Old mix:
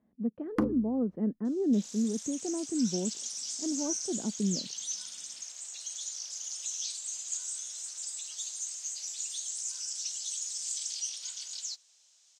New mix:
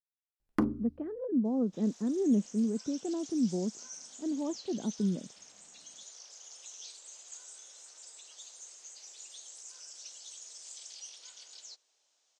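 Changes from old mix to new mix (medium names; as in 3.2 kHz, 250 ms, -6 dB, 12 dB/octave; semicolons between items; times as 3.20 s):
speech: entry +0.60 s; second sound: add tilt EQ -4.5 dB/octave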